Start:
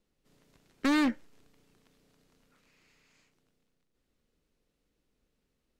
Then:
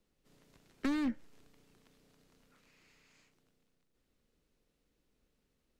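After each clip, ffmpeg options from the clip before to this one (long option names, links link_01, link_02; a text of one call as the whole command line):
ffmpeg -i in.wav -filter_complex "[0:a]acrossover=split=230[link_01][link_02];[link_02]acompressor=threshold=-37dB:ratio=10[link_03];[link_01][link_03]amix=inputs=2:normalize=0" out.wav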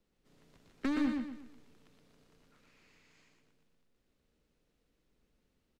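ffmpeg -i in.wav -filter_complex "[0:a]highshelf=frequency=7400:gain=-7,asplit=2[link_01][link_02];[link_02]aecho=0:1:120|240|360|480|600:0.631|0.233|0.0864|0.032|0.0118[link_03];[link_01][link_03]amix=inputs=2:normalize=0" out.wav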